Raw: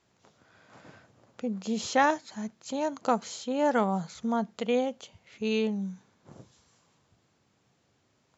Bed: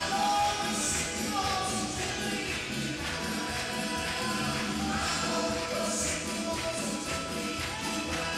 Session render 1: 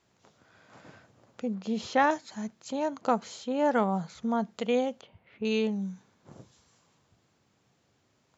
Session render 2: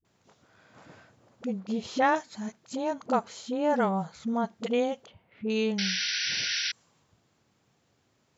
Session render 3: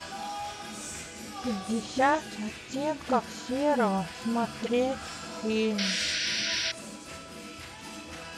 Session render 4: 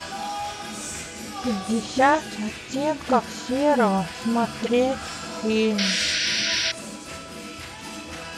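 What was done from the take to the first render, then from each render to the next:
0:01.55–0:02.11: high-frequency loss of the air 130 metres; 0:02.68–0:04.40: high-shelf EQ 5,700 Hz −9 dB; 0:05.01–0:05.45: Bessel low-pass filter 2,100 Hz, order 4
all-pass dispersion highs, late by 49 ms, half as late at 350 Hz; 0:05.78–0:06.72: sound drawn into the spectrogram noise 1,400–6,000 Hz −30 dBFS
mix in bed −9.5 dB
level +6 dB

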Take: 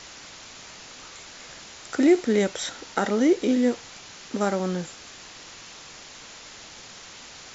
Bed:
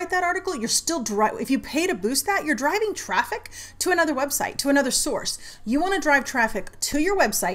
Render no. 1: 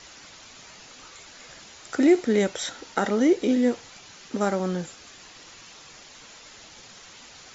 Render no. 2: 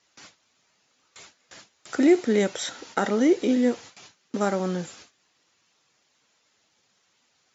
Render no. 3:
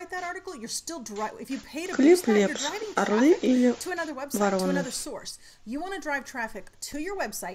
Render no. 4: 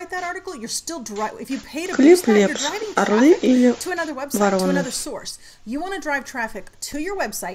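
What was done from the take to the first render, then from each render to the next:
broadband denoise 6 dB, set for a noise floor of −45 dBFS
noise gate with hold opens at −34 dBFS; high-pass filter 96 Hz 12 dB per octave
mix in bed −11 dB
level +6.5 dB

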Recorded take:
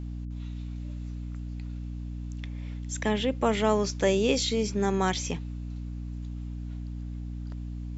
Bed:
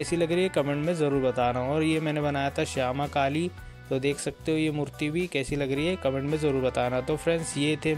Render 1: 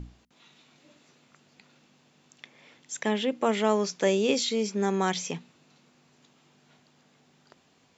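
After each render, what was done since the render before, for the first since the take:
mains-hum notches 60/120/180/240/300 Hz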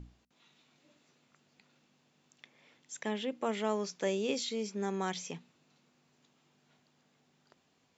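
level −8.5 dB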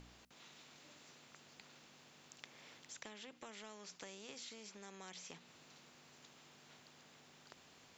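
downward compressor 2.5 to 1, threshold −48 dBFS, peak gain reduction 14.5 dB
every bin compressed towards the loudest bin 2 to 1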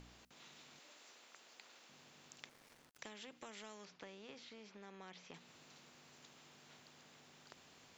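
0:00.79–0:01.89: high-pass filter 400 Hz
0:02.49–0:02.99: gap after every zero crossing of 0.18 ms
0:03.85–0:05.34: high-frequency loss of the air 190 metres

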